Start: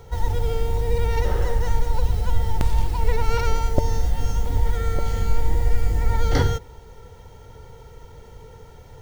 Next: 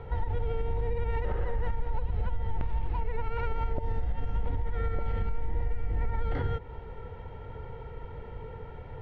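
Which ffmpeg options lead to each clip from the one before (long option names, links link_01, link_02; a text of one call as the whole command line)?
ffmpeg -i in.wav -af "lowpass=frequency=2700:width=0.5412,lowpass=frequency=2700:width=1.3066,acompressor=threshold=-18dB:ratio=6,alimiter=limit=-23dB:level=0:latency=1:release=191,volume=2dB" out.wav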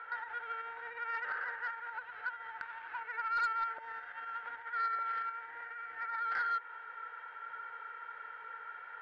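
ffmpeg -i in.wav -af "highpass=frequency=1500:width_type=q:width=8.8,aeval=exprs='0.126*(cos(1*acos(clip(val(0)/0.126,-1,1)))-cos(1*PI/2))+0.0224*(cos(5*acos(clip(val(0)/0.126,-1,1)))-cos(5*PI/2))':channel_layout=same,aemphasis=mode=reproduction:type=75fm,volume=-5.5dB" out.wav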